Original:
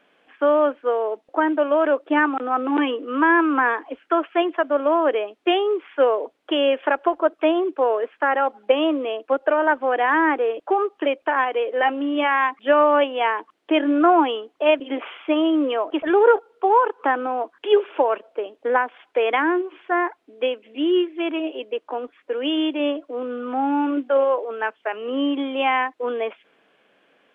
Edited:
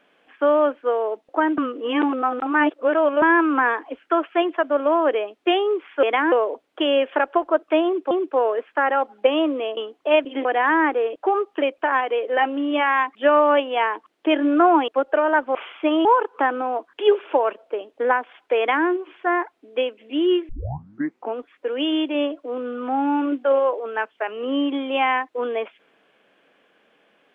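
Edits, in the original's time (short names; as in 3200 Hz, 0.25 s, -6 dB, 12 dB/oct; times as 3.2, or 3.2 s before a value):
1.58–3.22 reverse
7.56–7.82 loop, 2 plays
9.22–9.89 swap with 14.32–15
15.5–16.7 cut
19.23–19.52 copy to 6.03
21.14 tape start 0.87 s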